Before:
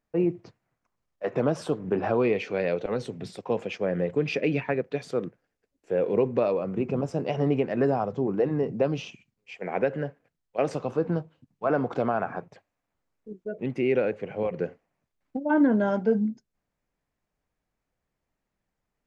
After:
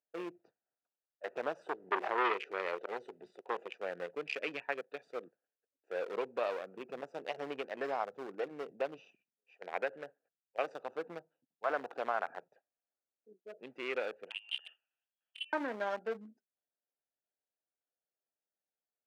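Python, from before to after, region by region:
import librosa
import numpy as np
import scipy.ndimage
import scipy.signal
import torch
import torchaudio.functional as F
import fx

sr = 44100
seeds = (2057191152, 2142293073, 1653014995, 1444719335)

y = fx.chain(x, sr, fx.small_body(hz=(370.0, 2000.0, 3000.0), ring_ms=35, db=9),
    fx.transformer_sat(knee_hz=910.0), at=(1.63, 3.7))
y = fx.chain(y, sr, fx.over_compress(threshold_db=-35.0, ratio=-1.0),
    fx.freq_invert(carrier_hz=3300), at=(14.3, 15.53))
y = fx.wiener(y, sr, points=41)
y = scipy.signal.sosfilt(scipy.signal.butter(2, 860.0, 'highpass', fs=sr, output='sos'), y)
y = F.gain(torch.from_numpy(y), -1.5).numpy()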